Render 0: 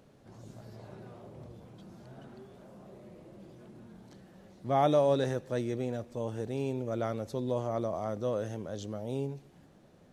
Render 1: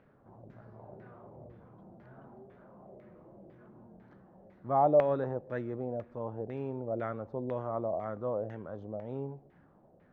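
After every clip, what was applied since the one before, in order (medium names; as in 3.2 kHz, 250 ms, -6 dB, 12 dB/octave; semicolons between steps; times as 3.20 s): LFO low-pass saw down 2 Hz 600–2000 Hz; trim -4.5 dB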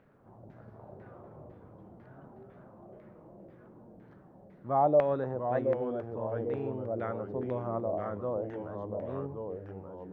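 ever faster or slower copies 119 ms, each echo -2 st, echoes 3, each echo -6 dB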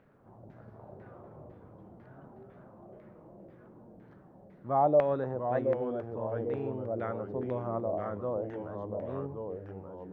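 no audible change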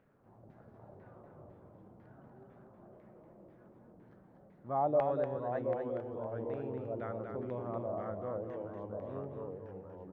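delay 239 ms -5.5 dB; trim -6 dB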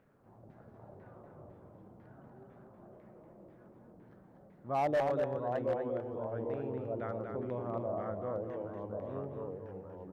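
overload inside the chain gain 27.5 dB; trim +1.5 dB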